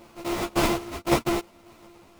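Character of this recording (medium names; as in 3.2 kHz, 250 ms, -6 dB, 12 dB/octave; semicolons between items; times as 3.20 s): a buzz of ramps at a fixed pitch in blocks of 128 samples; tremolo saw down 1.8 Hz, depth 45%; aliases and images of a low sample rate 1.7 kHz, jitter 20%; a shimmering, thickened sound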